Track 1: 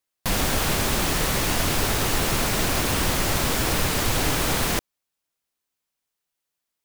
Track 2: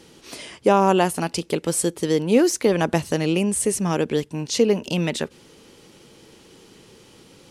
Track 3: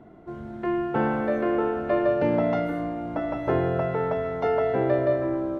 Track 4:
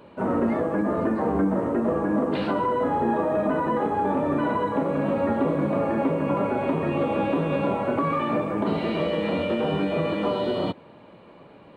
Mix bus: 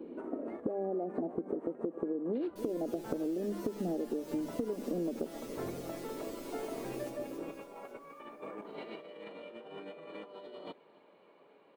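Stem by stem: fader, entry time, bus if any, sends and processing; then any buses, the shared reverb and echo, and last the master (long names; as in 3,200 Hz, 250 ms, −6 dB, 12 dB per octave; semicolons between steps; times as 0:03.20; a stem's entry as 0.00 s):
−19.0 dB, 2.30 s, no bus, no send, echo send −6 dB, guitar amp tone stack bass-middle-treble 10-0-10; tuned comb filter 150 Hz, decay 0.17 s, harmonics all, mix 100%
+2.5 dB, 0.00 s, bus A, no send, echo send −22.5 dB, Butterworth low-pass 740 Hz 72 dB per octave; low shelf with overshoot 180 Hz −13.5 dB, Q 3; downward compressor 1.5 to 1, threshold −37 dBFS, peak gain reduction 10.5 dB
−16.5 dB, 2.10 s, bus A, no send, no echo send, reverb reduction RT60 1.6 s
−18.0 dB, 0.00 s, no bus, no send, echo send −23 dB, high-pass filter 330 Hz 12 dB per octave; compressor whose output falls as the input rises −30 dBFS, ratio −0.5; hollow resonant body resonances 420/2,200 Hz, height 6 dB
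bus A: 0.0 dB, mains-hum notches 50/100/150/200 Hz; downward compressor 3 to 1, threshold −26 dBFS, peak gain reduction 9 dB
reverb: not used
echo: repeating echo 274 ms, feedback 58%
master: downward compressor 10 to 1, threshold −31 dBFS, peak gain reduction 9.5 dB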